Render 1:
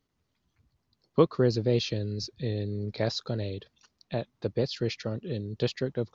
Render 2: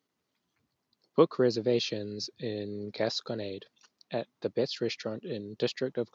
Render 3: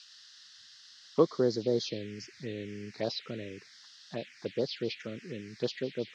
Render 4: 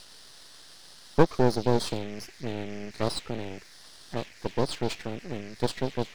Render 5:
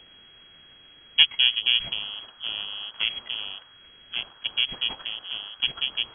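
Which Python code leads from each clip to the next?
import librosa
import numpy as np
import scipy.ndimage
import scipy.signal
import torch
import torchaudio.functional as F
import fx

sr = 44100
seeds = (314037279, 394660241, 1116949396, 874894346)

y1 = scipy.signal.sosfilt(scipy.signal.butter(2, 220.0, 'highpass', fs=sr, output='sos'), x)
y2 = fx.dmg_noise_band(y1, sr, seeds[0], low_hz=1700.0, high_hz=5300.0, level_db=-48.0)
y2 = fx.env_phaser(y2, sr, low_hz=330.0, high_hz=2600.0, full_db=-23.5)
y2 = y2 * librosa.db_to_amplitude(-1.5)
y3 = np.maximum(y2, 0.0)
y3 = y3 * librosa.db_to_amplitude(8.0)
y4 = fx.freq_invert(y3, sr, carrier_hz=3300)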